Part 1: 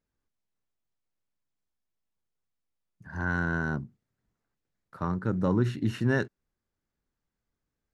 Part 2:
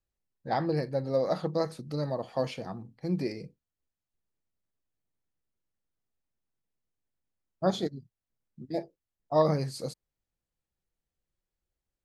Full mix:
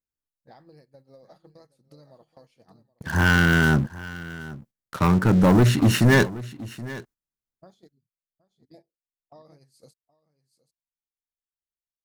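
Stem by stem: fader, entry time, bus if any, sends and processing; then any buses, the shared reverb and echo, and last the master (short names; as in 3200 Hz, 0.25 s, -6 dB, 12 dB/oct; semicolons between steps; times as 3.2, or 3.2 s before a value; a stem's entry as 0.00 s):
+3.0 dB, 0.00 s, no send, echo send -18 dB, sample leveller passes 3
-11.5 dB, 0.00 s, no send, echo send -9.5 dB, compressor 16:1, threshold -36 dBFS, peak gain reduction 18.5 dB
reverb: off
echo: echo 0.774 s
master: gate -52 dBFS, range -11 dB; high shelf 6000 Hz +12 dB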